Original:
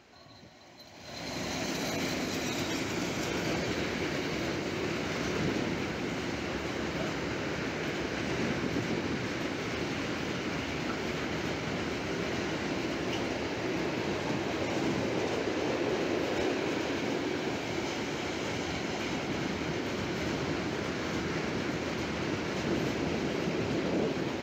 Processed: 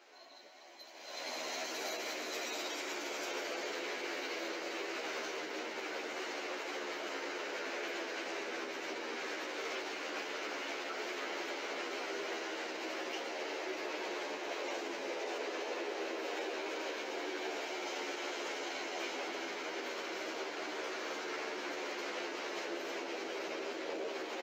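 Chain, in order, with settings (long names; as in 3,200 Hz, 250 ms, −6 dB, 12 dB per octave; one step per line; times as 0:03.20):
brickwall limiter −27 dBFS, peak gain reduction 6.5 dB
high-pass filter 380 Hz 24 dB per octave
barber-pole flanger 11.6 ms −0.27 Hz
level +1.5 dB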